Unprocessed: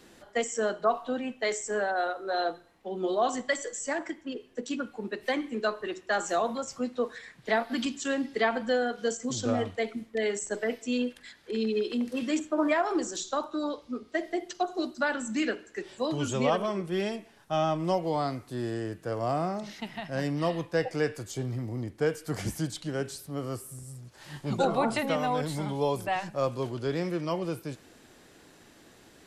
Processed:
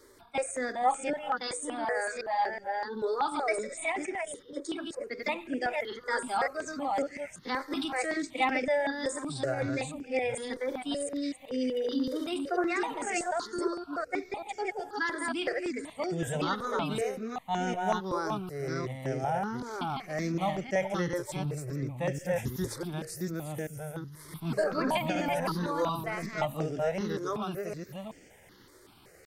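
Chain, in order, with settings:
delay that plays each chunk backwards 370 ms, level −2.5 dB
pitch shifter +2.5 semitones
step-sequenced phaser 5.3 Hz 730–3,900 Hz

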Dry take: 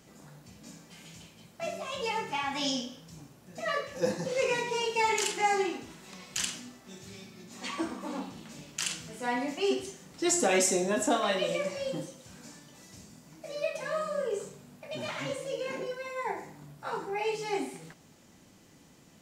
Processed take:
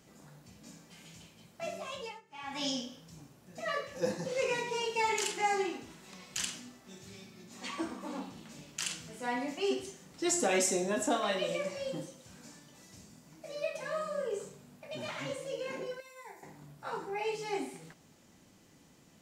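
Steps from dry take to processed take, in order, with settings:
0:01.88–0:02.63: duck −23.5 dB, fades 0.33 s
0:16.00–0:16.43: first-order pre-emphasis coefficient 0.8
level −3.5 dB

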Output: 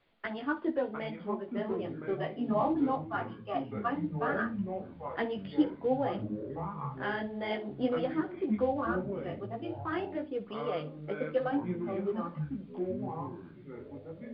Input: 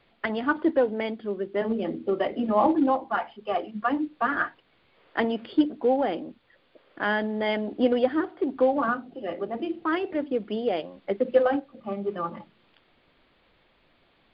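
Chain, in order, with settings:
multi-voice chorus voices 4, 0.94 Hz, delay 15 ms, depth 4.8 ms
flutter between parallel walls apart 10.1 metres, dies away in 0.21 s
delay with pitch and tempo change per echo 604 ms, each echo −6 semitones, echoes 3, each echo −6 dB
level −5.5 dB

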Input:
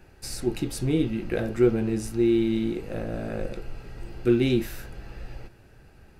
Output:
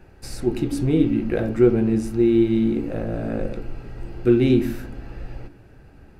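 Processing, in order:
high-shelf EQ 2,400 Hz −8.5 dB
on a send: formant resonators in series i + convolution reverb RT60 1.2 s, pre-delay 86 ms, DRR 20.5 dB
on the sum: level +4.5 dB

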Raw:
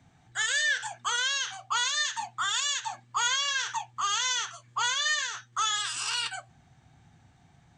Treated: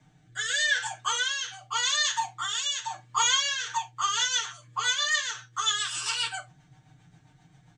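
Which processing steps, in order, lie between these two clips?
rotating-speaker cabinet horn 0.85 Hz, later 7.5 Hz, at 0:03.40
comb filter 6.6 ms, depth 98%
reverb whose tail is shaped and stops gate 90 ms falling, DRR 7.5 dB

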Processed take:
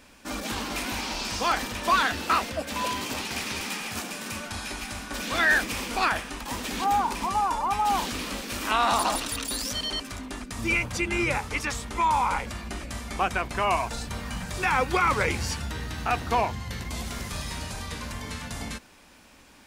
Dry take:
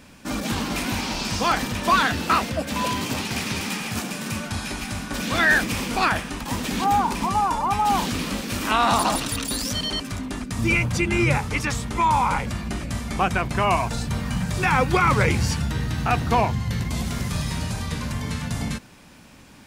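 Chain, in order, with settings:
parametric band 140 Hz −11.5 dB 1.4 octaves
level −3 dB

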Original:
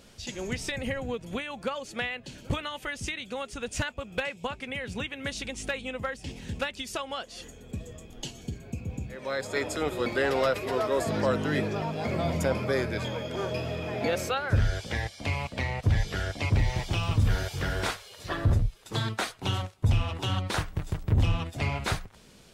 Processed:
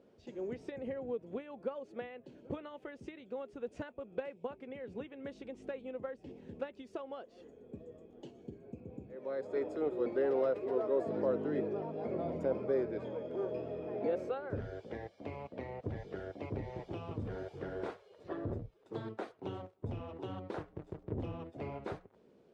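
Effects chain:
resonant band-pass 400 Hz, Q 1.7
level −2 dB

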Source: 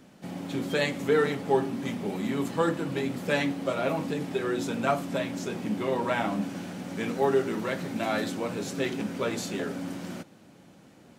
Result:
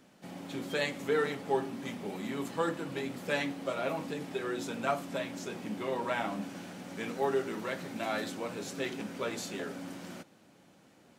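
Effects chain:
low-shelf EQ 300 Hz −6.5 dB
level −4 dB

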